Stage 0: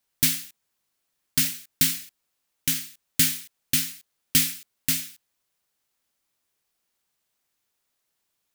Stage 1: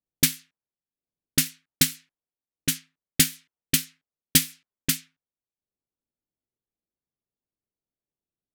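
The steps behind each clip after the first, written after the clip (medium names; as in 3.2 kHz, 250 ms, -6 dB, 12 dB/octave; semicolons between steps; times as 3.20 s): transient shaper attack +9 dB, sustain -7 dB; level-controlled noise filter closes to 400 Hz, open at -14.5 dBFS; trim -4 dB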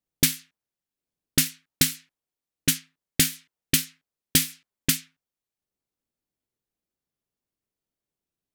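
peak limiter -8.5 dBFS, peak gain reduction 6.5 dB; trim +3.5 dB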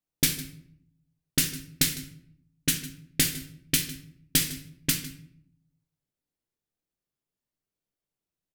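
delay 154 ms -18 dB; simulated room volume 120 m³, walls mixed, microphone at 0.48 m; trim -3.5 dB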